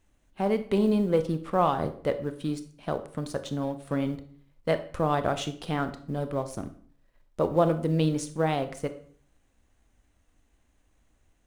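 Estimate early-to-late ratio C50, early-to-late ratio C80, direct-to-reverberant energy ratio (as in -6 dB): 13.0 dB, 17.0 dB, 9.5 dB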